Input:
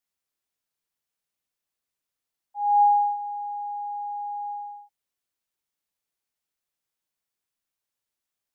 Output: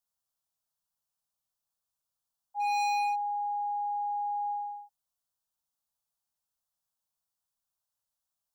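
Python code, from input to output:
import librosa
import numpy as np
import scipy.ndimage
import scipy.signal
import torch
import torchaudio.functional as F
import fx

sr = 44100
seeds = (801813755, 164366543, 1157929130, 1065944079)

y = fx.fixed_phaser(x, sr, hz=890.0, stages=4)
y = np.clip(y, -10.0 ** (-27.5 / 20.0), 10.0 ** (-27.5 / 20.0))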